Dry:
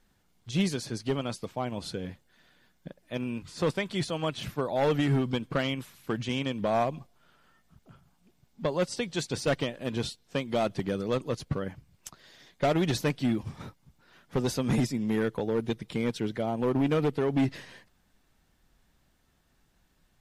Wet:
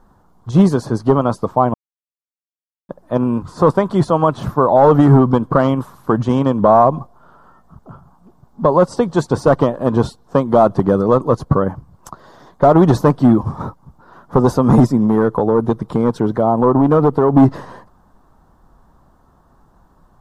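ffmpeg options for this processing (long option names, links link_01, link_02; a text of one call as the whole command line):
ffmpeg -i in.wav -filter_complex "[0:a]asettb=1/sr,asplit=3[link_01][link_02][link_03];[link_01]atrim=end=15.064[link_04];[link_02]atrim=start=15.06:end=17.34,asetpts=PTS-STARTPTS,afade=type=in:duration=0.004:curve=qsin,afade=type=out:start_time=2.276:duration=0.004:curve=qsin,acompressor=threshold=-28dB:ratio=2:attack=3.2:release=140:knee=1:detection=peak[link_05];[link_03]atrim=start=17.336[link_06];[link_04][link_05]acrossfade=duration=0.004:curve1=hsin:curve2=qsin[link_07];[link_07][link_06]acrossfade=duration=0.004:curve1=qsin:curve2=hsin,asplit=3[link_08][link_09][link_10];[link_08]atrim=end=1.74,asetpts=PTS-STARTPTS,afade=type=out:start_time=1.736:duration=0.004:curve=hsin[link_11];[link_09]atrim=start=1.74:end=2.89,asetpts=PTS-STARTPTS,volume=0[link_12];[link_10]atrim=start=2.89,asetpts=PTS-STARTPTS,afade=type=in:duration=0.004:curve=hsin[link_13];[link_11][link_12][link_13]concat=n=3:v=0:a=1,highshelf=frequency=1600:width_type=q:width=3:gain=-13.5,alimiter=level_in=17dB:limit=-1dB:release=50:level=0:latency=1,volume=-1dB" out.wav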